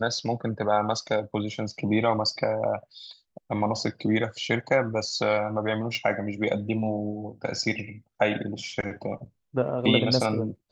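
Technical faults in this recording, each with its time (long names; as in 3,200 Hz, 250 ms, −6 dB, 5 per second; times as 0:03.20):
0:05.95: click −19 dBFS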